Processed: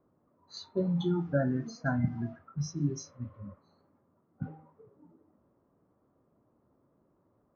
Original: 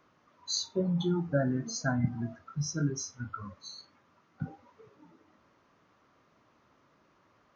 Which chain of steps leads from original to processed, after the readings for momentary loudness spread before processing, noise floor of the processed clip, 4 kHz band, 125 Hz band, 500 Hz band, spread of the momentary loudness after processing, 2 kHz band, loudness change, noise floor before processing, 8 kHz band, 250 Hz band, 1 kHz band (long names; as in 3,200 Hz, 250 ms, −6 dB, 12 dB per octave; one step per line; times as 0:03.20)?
14 LU, −72 dBFS, −10.0 dB, 0.0 dB, 0.0 dB, 15 LU, −1.5 dB, −0.5 dB, −68 dBFS, can't be measured, 0.0 dB, −1.5 dB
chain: high-shelf EQ 4,200 Hz −7.5 dB
hum removal 157.1 Hz, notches 27
low-pass that shuts in the quiet parts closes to 560 Hz, open at −27 dBFS
healed spectral selection 0:02.68–0:03.49, 420–1,700 Hz both